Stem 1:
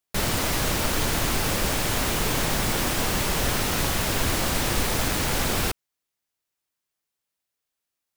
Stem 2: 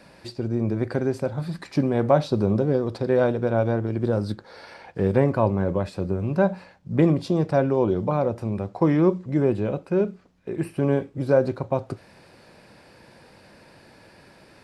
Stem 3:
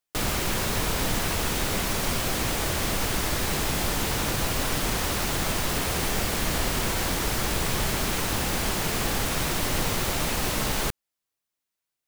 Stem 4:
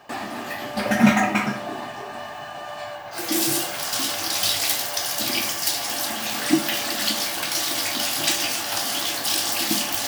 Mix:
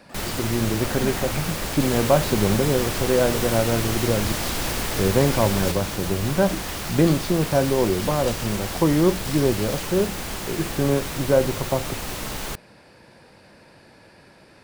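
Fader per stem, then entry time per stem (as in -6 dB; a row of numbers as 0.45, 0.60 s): -4.0, +0.5, -4.0, -14.5 dB; 0.00, 0.00, 1.65, 0.00 s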